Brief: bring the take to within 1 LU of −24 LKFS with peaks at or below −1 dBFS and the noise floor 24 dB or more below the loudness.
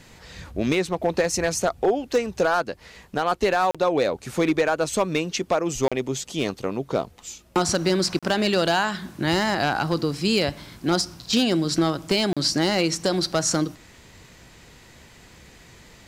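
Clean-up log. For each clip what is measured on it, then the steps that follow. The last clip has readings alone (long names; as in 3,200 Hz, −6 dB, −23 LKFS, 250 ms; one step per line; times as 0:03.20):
share of clipped samples 0.6%; peaks flattened at −13.0 dBFS; number of dropouts 4; longest dropout 36 ms; integrated loudness −23.5 LKFS; sample peak −13.0 dBFS; target loudness −24.0 LKFS
→ clipped peaks rebuilt −13 dBFS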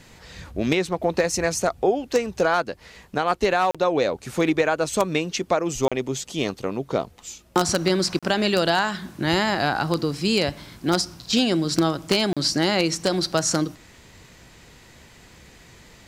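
share of clipped samples 0.0%; number of dropouts 4; longest dropout 36 ms
→ repair the gap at 0:03.71/0:05.88/0:08.19/0:12.33, 36 ms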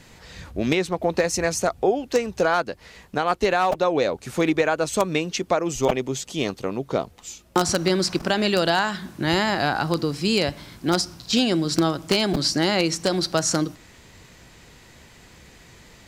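number of dropouts 0; integrated loudness −23.0 LKFS; sample peak −4.0 dBFS; target loudness −24.0 LKFS
→ level −1 dB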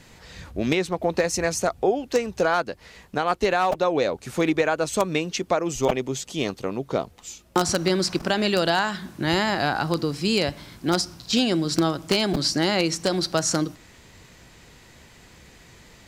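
integrated loudness −24.0 LKFS; sample peak −5.0 dBFS; background noise floor −51 dBFS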